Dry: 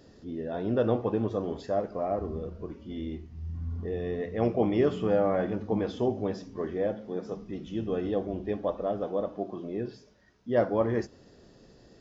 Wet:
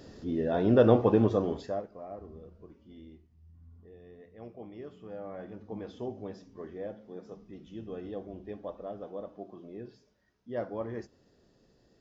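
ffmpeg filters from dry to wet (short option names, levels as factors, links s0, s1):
-af "volume=5.62,afade=t=out:st=1.24:d=0.46:silence=0.375837,afade=t=out:st=1.7:d=0.18:silence=0.334965,afade=t=out:st=2.87:d=0.52:silence=0.446684,afade=t=in:st=4.99:d=1.03:silence=0.316228"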